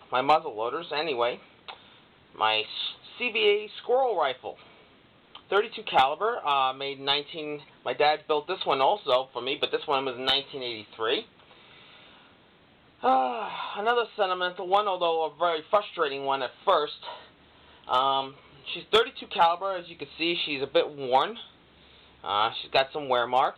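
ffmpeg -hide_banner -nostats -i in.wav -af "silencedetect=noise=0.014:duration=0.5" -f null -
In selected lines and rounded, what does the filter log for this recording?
silence_start: 1.74
silence_end: 2.36 | silence_duration: 0.62
silence_start: 4.52
silence_end: 5.35 | silence_duration: 0.83
silence_start: 11.22
silence_end: 13.03 | silence_duration: 1.81
silence_start: 17.17
silence_end: 17.88 | silence_duration: 0.71
silence_start: 21.43
silence_end: 22.24 | silence_duration: 0.80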